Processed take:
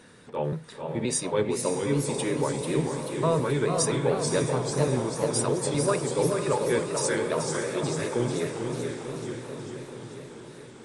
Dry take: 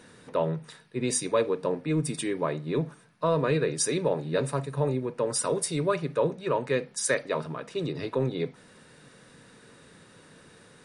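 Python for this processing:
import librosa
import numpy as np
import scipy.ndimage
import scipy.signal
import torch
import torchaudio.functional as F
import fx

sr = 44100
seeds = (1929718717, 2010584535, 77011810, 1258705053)

y = fx.pitch_trill(x, sr, semitones=-1.5, every_ms=261)
y = fx.echo_diffused(y, sr, ms=527, feedback_pct=56, wet_db=-7.0)
y = fx.echo_warbled(y, sr, ms=438, feedback_pct=64, rate_hz=2.8, cents=169, wet_db=-6.5)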